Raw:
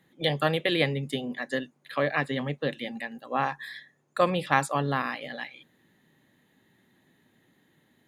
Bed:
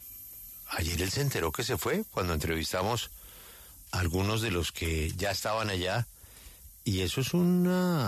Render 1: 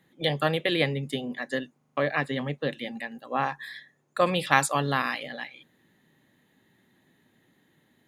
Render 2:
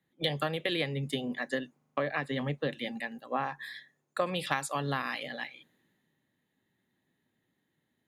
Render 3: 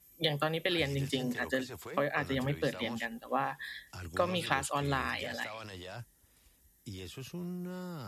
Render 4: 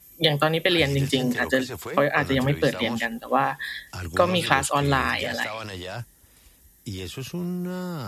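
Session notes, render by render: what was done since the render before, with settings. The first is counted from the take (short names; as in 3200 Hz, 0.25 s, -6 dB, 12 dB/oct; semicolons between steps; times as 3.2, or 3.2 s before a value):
1.77 stutter in place 0.04 s, 5 plays; 4.26–5.23 high shelf 2100 Hz +8.5 dB
compressor 16:1, threshold -27 dBFS, peak gain reduction 14.5 dB; three-band expander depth 40%
add bed -14.5 dB
gain +10.5 dB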